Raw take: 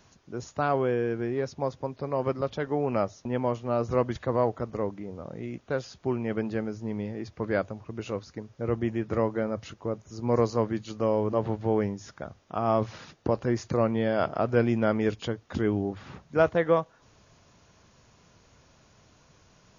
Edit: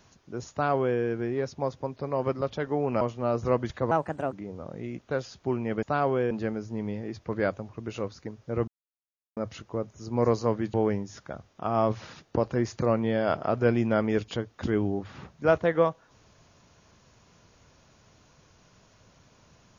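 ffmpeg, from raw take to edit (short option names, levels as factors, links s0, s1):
-filter_complex "[0:a]asplit=9[s0][s1][s2][s3][s4][s5][s6][s7][s8];[s0]atrim=end=3.012[s9];[s1]atrim=start=3.468:end=4.374[s10];[s2]atrim=start=4.37:end=4.92,asetpts=PTS-STARTPTS,asetrate=58212,aresample=44100[s11];[s3]atrim=start=4.916:end=6.422[s12];[s4]atrim=start=0.508:end=0.992[s13];[s5]atrim=start=6.418:end=8.79,asetpts=PTS-STARTPTS,afade=t=out:st=2.368:d=0.004:c=hsin[s14];[s6]atrim=start=8.79:end=9.48,asetpts=PTS-STARTPTS,volume=0[s15];[s7]atrim=start=9.48:end=10.852,asetpts=PTS-STARTPTS,afade=t=in:d=0.004:c=hsin[s16];[s8]atrim=start=11.648[s17];[s9][s10]acrossfade=d=0.004:c1=hsin:c2=hsin[s18];[s18][s11]acrossfade=d=0.004:c1=hsin:c2=hsin[s19];[s19][s12]acrossfade=d=0.004:c1=hsin:c2=hsin[s20];[s20][s13]acrossfade=d=0.004:c1=hsin:c2=hsin[s21];[s14][s15][s16]concat=n=3:v=0:a=1[s22];[s21][s22]acrossfade=d=0.004:c1=hsin:c2=hsin[s23];[s23][s17]acrossfade=d=0.004:c1=hsin:c2=hsin"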